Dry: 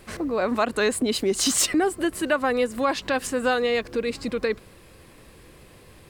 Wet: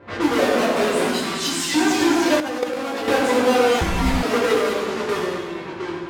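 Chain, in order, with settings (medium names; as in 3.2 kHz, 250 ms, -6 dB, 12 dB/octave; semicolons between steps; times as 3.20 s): square wave that keeps the level; reverb removal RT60 1.4 s; echo whose repeats swap between lows and highs 103 ms, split 1.2 kHz, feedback 61%, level -6 dB; ever faster or slower copies 101 ms, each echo -2 st, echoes 3, each echo -6 dB; peak limiter -15.5 dBFS, peak gain reduction 8.5 dB; 1.08–1.72 s: peaking EQ 490 Hz -12.5 dB 1.9 oct; level-controlled noise filter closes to 1.7 kHz, open at -21.5 dBFS; high-pass 280 Hz 6 dB/octave; reverberation RT60 1.3 s, pre-delay 5 ms, DRR -5.5 dB; 3.81–4.23 s: frequency shift -420 Hz; low-pass 3.7 kHz 6 dB/octave; 2.40–3.08 s: level held to a coarse grid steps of 13 dB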